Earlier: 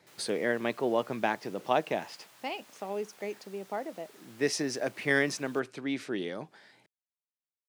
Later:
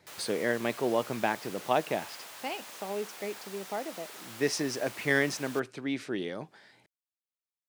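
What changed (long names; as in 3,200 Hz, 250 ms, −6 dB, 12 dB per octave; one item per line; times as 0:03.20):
background +11.5 dB
master: remove high-pass filter 120 Hz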